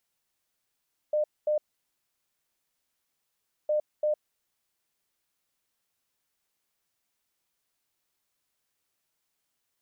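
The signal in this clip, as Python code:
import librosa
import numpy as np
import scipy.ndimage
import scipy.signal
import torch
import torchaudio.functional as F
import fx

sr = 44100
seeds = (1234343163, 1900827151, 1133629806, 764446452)

y = fx.beep_pattern(sr, wave='sine', hz=604.0, on_s=0.11, off_s=0.23, beeps=2, pause_s=2.11, groups=2, level_db=-22.5)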